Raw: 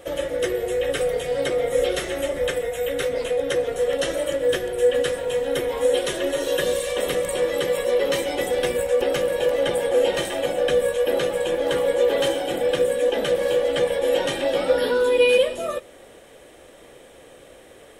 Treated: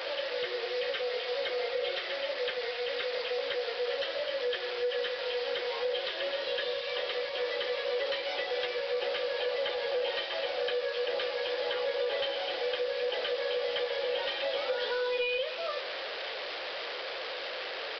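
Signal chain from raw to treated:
linear delta modulator 64 kbit/s, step −24.5 dBFS
high-pass filter 470 Hz 24 dB per octave
high-shelf EQ 2,300 Hz +12 dB
downward compressor, threshold −19 dBFS, peak gain reduction 8 dB
soft clipping −15.5 dBFS, distortion −20 dB
high-frequency loss of the air 97 metres
downsampling to 11,025 Hz
level −6 dB

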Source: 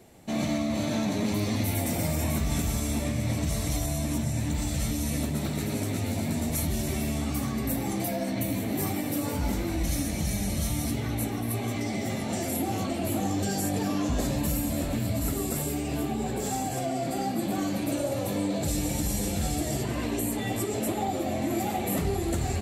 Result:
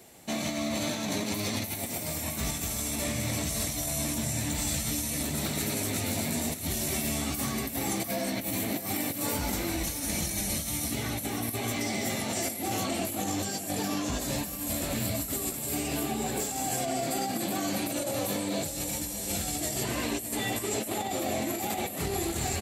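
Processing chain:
spectral tilt +2 dB per octave
compressor whose output falls as the input rises −31 dBFS, ratio −0.5
on a send: single-tap delay 618 ms −12.5 dB

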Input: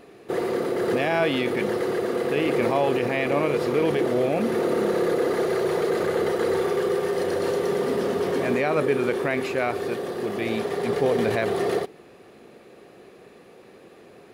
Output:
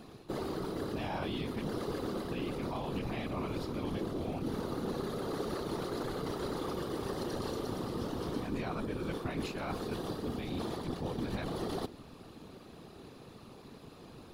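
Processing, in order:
graphic EQ with 10 bands 125 Hz +7 dB, 250 Hz +3 dB, 500 Hz −12 dB, 1,000 Hz +4 dB, 2,000 Hz −11 dB, 4,000 Hz +5 dB, 8,000 Hz −3 dB
reversed playback
downward compressor 6 to 1, threshold −34 dBFS, peak gain reduction 13.5 dB
reversed playback
random phases in short frames

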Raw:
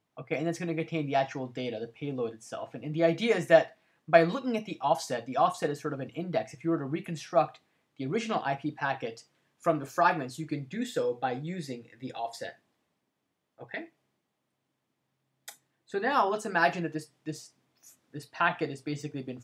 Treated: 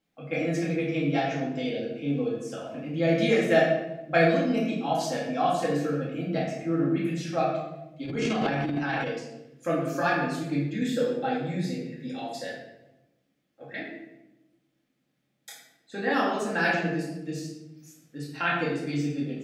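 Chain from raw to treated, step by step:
graphic EQ with 15 bands 100 Hz −10 dB, 1,000 Hz −10 dB, 10,000 Hz −3 dB
rectangular room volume 370 cubic metres, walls mixed, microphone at 2.2 metres
0:08.05–0:09.09: transient designer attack −9 dB, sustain +11 dB
level −1.5 dB

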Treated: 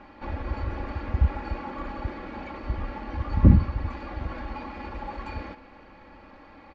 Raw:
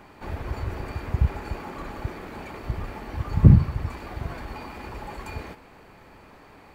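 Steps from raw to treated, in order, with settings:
Bessel low-pass filter 3,500 Hz, order 8
comb filter 3.6 ms, depth 67%
level −1 dB

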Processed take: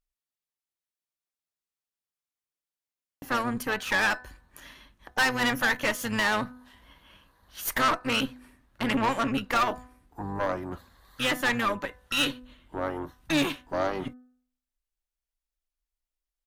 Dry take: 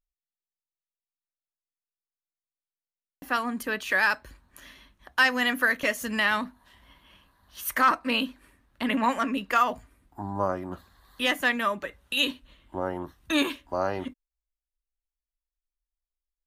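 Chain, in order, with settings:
pitch-shifted copies added −12 semitones −10 dB
tube saturation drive 23 dB, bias 0.65
hum removal 250.6 Hz, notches 7
level +4 dB

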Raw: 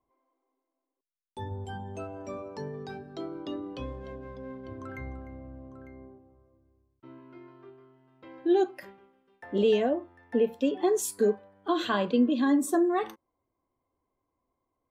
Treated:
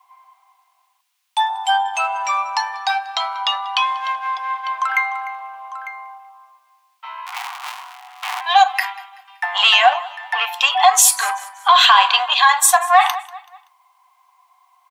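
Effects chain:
0:07.26–0:08.41: sub-harmonics by changed cycles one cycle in 3, inverted
in parallel at −7 dB: soft clipping −27 dBFS, distortion −8 dB
on the sum: Chebyshev high-pass with heavy ripple 720 Hz, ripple 6 dB
repeating echo 190 ms, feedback 39%, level −22 dB
boost into a limiter +28 dB
level −1 dB

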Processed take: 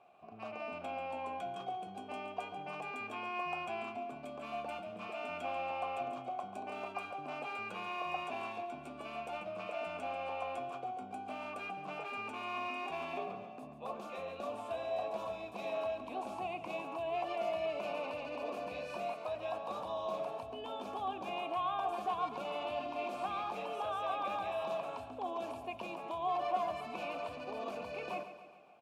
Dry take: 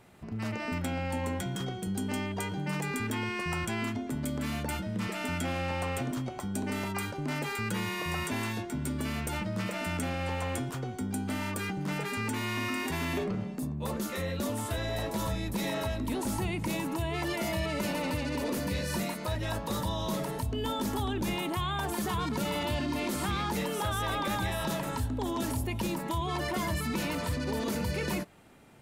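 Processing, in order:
formant filter a
notch filter 1,300 Hz, Q 14
on a send: repeating echo 140 ms, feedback 54%, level −11.5 dB
on the sum: level +6 dB

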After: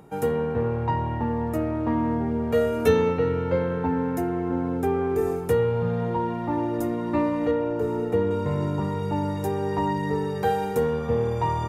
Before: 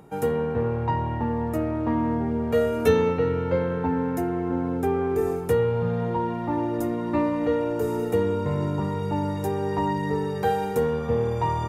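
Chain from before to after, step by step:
0:07.51–0:08.31: low-pass filter 2,200 Hz 6 dB per octave

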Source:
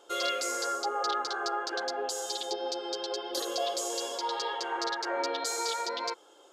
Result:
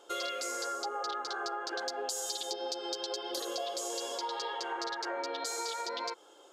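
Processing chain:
0:01.79–0:03.35: high-shelf EQ 5,200 Hz +9.5 dB
downward compressor, threshold −33 dBFS, peak gain reduction 7.5 dB

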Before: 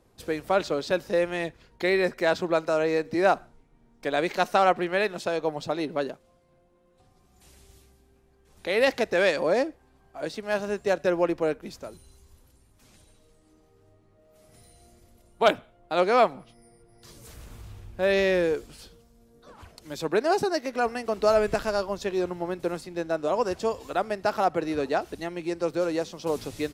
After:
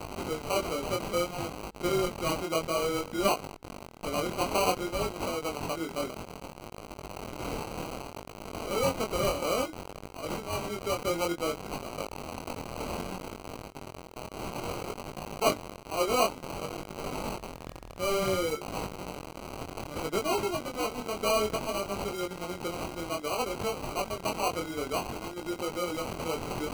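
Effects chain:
spike at every zero crossing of −22 dBFS
decimation without filtering 25×
chorus effect 0.59 Hz, delay 19.5 ms, depth 5.2 ms
level −3 dB

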